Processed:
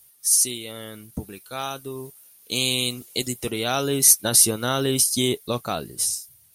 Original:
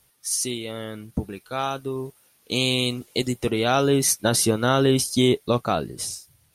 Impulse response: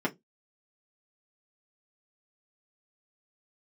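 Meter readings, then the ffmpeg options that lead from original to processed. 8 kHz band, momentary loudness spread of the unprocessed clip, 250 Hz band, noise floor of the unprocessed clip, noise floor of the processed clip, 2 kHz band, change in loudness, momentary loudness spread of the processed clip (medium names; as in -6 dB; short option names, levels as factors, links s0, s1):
+7.0 dB, 13 LU, -5.0 dB, -62 dBFS, -54 dBFS, -2.0 dB, +2.5 dB, 21 LU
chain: -af "aemphasis=mode=production:type=75kf,volume=0.562"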